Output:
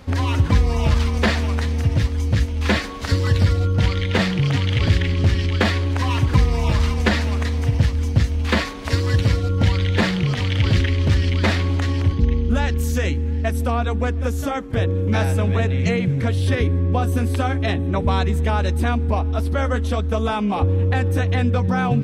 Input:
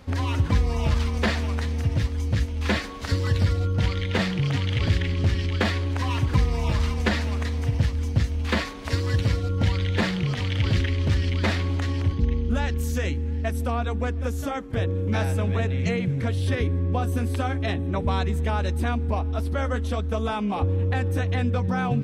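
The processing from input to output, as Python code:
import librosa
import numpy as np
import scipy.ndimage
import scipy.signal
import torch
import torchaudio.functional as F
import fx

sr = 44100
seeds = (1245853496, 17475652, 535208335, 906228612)

y = x * librosa.db_to_amplitude(5.0)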